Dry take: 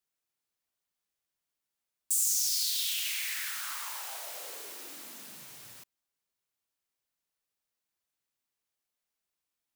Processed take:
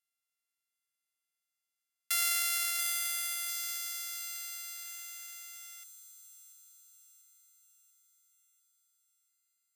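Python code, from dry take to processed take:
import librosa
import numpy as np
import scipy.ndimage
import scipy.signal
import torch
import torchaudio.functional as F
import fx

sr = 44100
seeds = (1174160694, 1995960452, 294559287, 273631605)

y = np.r_[np.sort(x[:len(x) // 64 * 64].reshape(-1, 64), axis=1).ravel(), x[len(x) // 64 * 64:]]
y = fx.ladder_highpass(y, sr, hz=1300.0, resonance_pct=25)
y = fx.peak_eq(y, sr, hz=12000.0, db=13.5, octaves=1.6)
y = fx.echo_wet_highpass(y, sr, ms=690, feedback_pct=55, hz=4000.0, wet_db=-8.0)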